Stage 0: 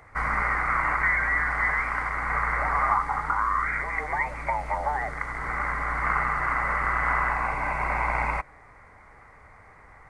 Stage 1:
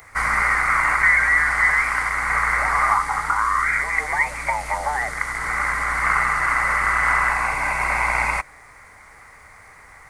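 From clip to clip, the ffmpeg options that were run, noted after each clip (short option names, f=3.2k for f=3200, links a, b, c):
-af "crystalizer=i=8:c=0"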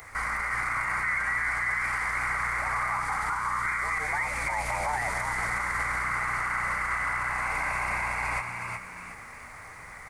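-filter_complex "[0:a]acompressor=threshold=-23dB:ratio=6,alimiter=limit=-22dB:level=0:latency=1:release=20,asplit=2[a][b];[b]asplit=4[c][d][e][f];[c]adelay=365,afreqshift=61,volume=-5dB[g];[d]adelay=730,afreqshift=122,volume=-14.1dB[h];[e]adelay=1095,afreqshift=183,volume=-23.2dB[i];[f]adelay=1460,afreqshift=244,volume=-32.4dB[j];[g][h][i][j]amix=inputs=4:normalize=0[k];[a][k]amix=inputs=2:normalize=0"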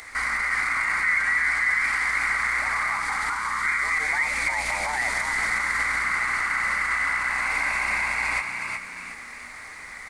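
-af "equalizer=f=125:t=o:w=1:g=-9,equalizer=f=250:t=o:w=1:g=8,equalizer=f=2k:t=o:w=1:g=6,equalizer=f=4k:t=o:w=1:g=11,equalizer=f=8k:t=o:w=1:g=6,volume=-2dB"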